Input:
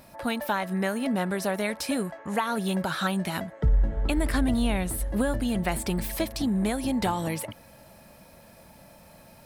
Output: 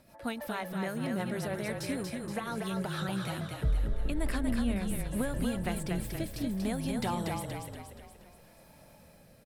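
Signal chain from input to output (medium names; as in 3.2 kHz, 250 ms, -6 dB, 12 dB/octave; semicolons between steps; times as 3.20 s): rotary cabinet horn 6.3 Hz, later 0.6 Hz, at 3.63 s; frequency-shifting echo 237 ms, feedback 50%, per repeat -32 Hz, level -4 dB; trim -6 dB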